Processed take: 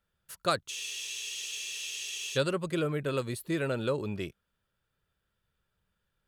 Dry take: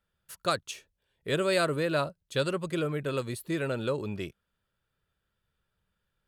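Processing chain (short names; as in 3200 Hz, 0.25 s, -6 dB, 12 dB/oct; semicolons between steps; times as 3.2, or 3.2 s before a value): spectral freeze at 0.71, 1.65 s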